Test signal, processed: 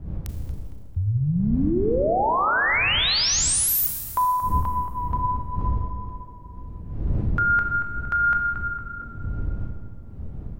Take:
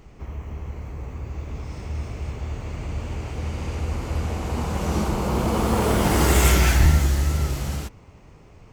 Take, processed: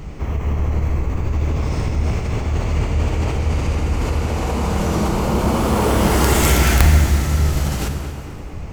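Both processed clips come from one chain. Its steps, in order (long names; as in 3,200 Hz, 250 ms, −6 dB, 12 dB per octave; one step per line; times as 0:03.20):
wind on the microphone 88 Hz −37 dBFS
in parallel at 0 dB: compressor whose output falls as the input rises −32 dBFS, ratio −1
on the sum: tape delay 229 ms, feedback 62%, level −8.5 dB, low-pass 2,200 Hz
wrap-around overflow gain 6 dB
four-comb reverb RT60 1.8 s, combs from 27 ms, DRR 6 dB
level +1.5 dB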